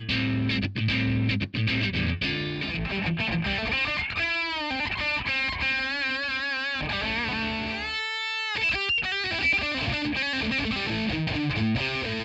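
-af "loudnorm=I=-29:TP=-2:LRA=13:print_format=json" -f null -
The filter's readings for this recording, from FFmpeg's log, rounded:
"input_i" : "-26.0",
"input_tp" : "-14.2",
"input_lra" : "0.9",
"input_thresh" : "-36.0",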